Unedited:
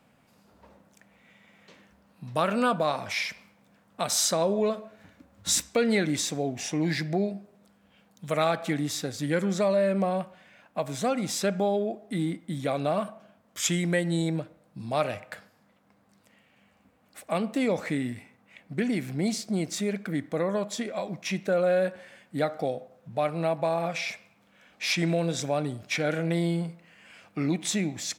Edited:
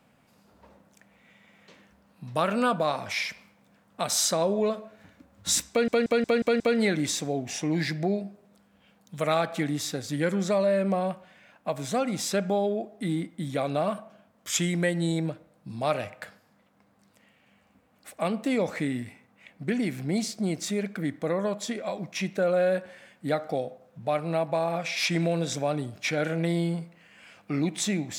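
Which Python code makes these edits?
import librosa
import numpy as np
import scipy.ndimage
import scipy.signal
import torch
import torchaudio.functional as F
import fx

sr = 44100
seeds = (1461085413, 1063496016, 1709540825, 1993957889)

y = fx.edit(x, sr, fx.stutter(start_s=5.7, slice_s=0.18, count=6),
    fx.cut(start_s=24.06, length_s=0.77), tone=tone)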